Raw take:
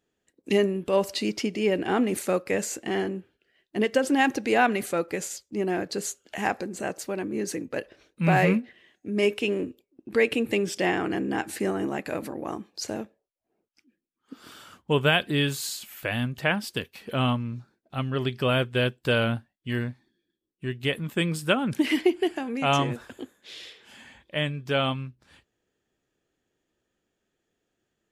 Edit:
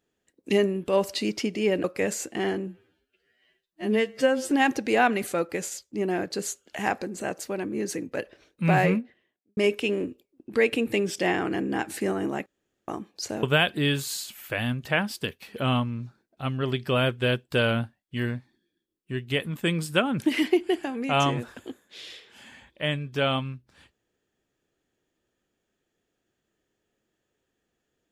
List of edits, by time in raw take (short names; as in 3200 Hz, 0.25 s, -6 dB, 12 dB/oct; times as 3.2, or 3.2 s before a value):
1.84–2.35 cut
3.18–4.1 stretch 2×
8.29–9.16 studio fade out
12.05–12.47 room tone
13.02–14.96 cut